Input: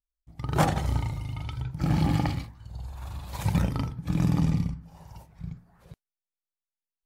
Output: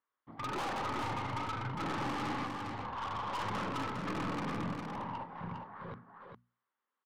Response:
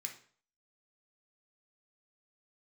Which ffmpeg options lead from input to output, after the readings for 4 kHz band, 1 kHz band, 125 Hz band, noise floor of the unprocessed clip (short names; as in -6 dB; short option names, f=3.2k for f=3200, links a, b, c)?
-3.0 dB, 0.0 dB, -16.0 dB, under -85 dBFS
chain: -filter_complex "[0:a]asplit=2[a][b];[b]aeval=exprs='(mod(7.5*val(0)+1,2)-1)/7.5':c=same,volume=-8dB[c];[a][c]amix=inputs=2:normalize=0,equalizer=f=130:t=o:w=3:g=-5,acompressor=threshold=-27dB:ratio=6,asplit=2[d][e];[e]highpass=f=720:p=1,volume=23dB,asoftclip=type=tanh:threshold=-12.5dB[f];[d][f]amix=inputs=2:normalize=0,lowpass=f=1.1k:p=1,volume=-6dB,highpass=f=100:w=0.5412,highpass=f=100:w=1.3066,equalizer=f=150:t=q:w=4:g=-9,equalizer=f=230:t=q:w=4:g=6,equalizer=f=670:t=q:w=4:g=-8,equalizer=f=1.1k:t=q:w=4:g=7,equalizer=f=2.5k:t=q:w=4:g=-10,lowpass=f=2.9k:w=0.5412,lowpass=f=2.9k:w=1.3066,aeval=exprs='(tanh(56.2*val(0)+0.2)-tanh(0.2))/56.2':c=same,bandreject=f=60:t=h:w=6,bandreject=f=120:t=h:w=6,bandreject=f=180:t=h:w=6,bandreject=f=240:t=h:w=6,aecho=1:1:406:0.562"